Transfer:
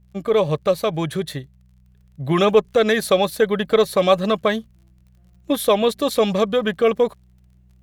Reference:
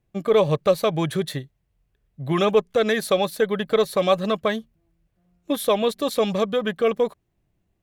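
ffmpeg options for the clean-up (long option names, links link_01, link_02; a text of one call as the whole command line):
ffmpeg -i in.wav -af "adeclick=threshold=4,bandreject=frequency=62:width_type=h:width=4,bandreject=frequency=124:width_type=h:width=4,bandreject=frequency=186:width_type=h:width=4,asetnsamples=nb_out_samples=441:pad=0,asendcmd='1.87 volume volume -3.5dB',volume=0dB" out.wav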